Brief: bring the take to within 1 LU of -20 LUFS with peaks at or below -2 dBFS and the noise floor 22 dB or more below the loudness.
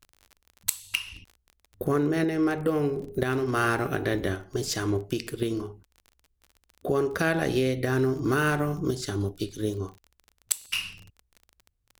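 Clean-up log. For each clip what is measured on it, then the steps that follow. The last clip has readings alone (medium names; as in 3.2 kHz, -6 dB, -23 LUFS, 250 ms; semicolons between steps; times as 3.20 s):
tick rate 29 per s; loudness -28.0 LUFS; peak level -7.5 dBFS; loudness target -20.0 LUFS
-> de-click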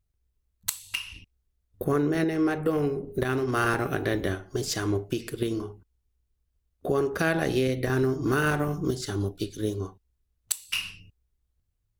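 tick rate 0.50 per s; loudness -28.0 LUFS; peak level -8.0 dBFS; loudness target -20.0 LUFS
-> trim +8 dB; peak limiter -2 dBFS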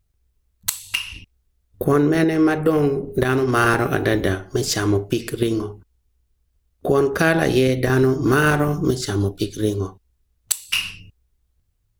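loudness -20.0 LUFS; peak level -2.0 dBFS; noise floor -69 dBFS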